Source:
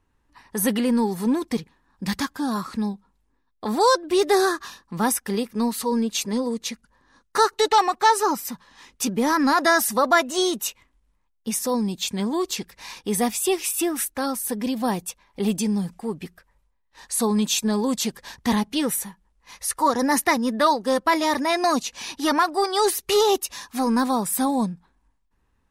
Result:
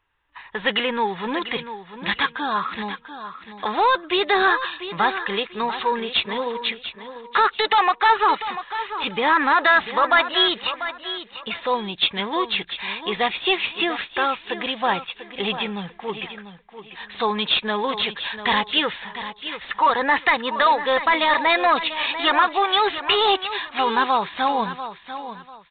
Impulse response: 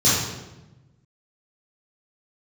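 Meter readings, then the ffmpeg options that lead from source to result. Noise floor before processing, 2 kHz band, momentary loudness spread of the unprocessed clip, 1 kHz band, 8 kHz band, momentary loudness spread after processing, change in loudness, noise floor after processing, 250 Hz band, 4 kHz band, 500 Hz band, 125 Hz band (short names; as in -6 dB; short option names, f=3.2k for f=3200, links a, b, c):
-69 dBFS, +7.5 dB, 11 LU, +3.5 dB, under -40 dB, 14 LU, +1.5 dB, -48 dBFS, -7.5 dB, +7.0 dB, -1.5 dB, -6.5 dB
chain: -af "equalizer=f=240:w=2.4:g=-9.5,alimiter=limit=-14dB:level=0:latency=1:release=15,tiltshelf=f=730:g=-9,agate=range=-6dB:threshold=-53dB:ratio=16:detection=peak,asoftclip=type=tanh:threshold=-14dB,aresample=8000,aresample=44100,aecho=1:1:693|1386|2079:0.266|0.0718|0.0194,volume=5.5dB"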